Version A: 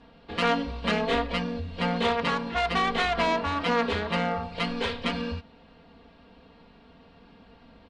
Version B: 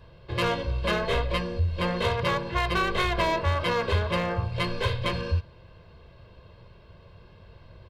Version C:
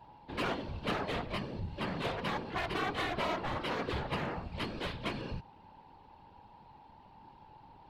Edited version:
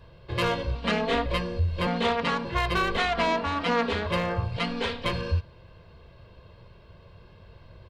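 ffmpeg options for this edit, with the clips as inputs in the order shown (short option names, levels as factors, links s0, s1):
-filter_complex "[0:a]asplit=4[s0][s1][s2][s3];[1:a]asplit=5[s4][s5][s6][s7][s8];[s4]atrim=end=0.752[s9];[s0]atrim=start=0.748:end=1.262[s10];[s5]atrim=start=1.258:end=1.872[s11];[s1]atrim=start=1.868:end=2.452[s12];[s6]atrim=start=2.448:end=2.972[s13];[s2]atrim=start=2.968:end=4.062[s14];[s7]atrim=start=4.058:end=4.572[s15];[s3]atrim=start=4.568:end=5.052[s16];[s8]atrim=start=5.048[s17];[s9][s10]acrossfade=d=0.004:c1=hsin:c2=hsin[s18];[s18][s11]acrossfade=d=0.004:c1=hsin:c2=hsin[s19];[s19][s12]acrossfade=d=0.004:c1=hsin:c2=hsin[s20];[s20][s13]acrossfade=d=0.004:c1=hsin:c2=hsin[s21];[s21][s14]acrossfade=d=0.004:c1=hsin:c2=hsin[s22];[s22][s15]acrossfade=d=0.004:c1=hsin:c2=hsin[s23];[s23][s16]acrossfade=d=0.004:c1=hsin:c2=hsin[s24];[s24][s17]acrossfade=d=0.004:c1=hsin:c2=hsin"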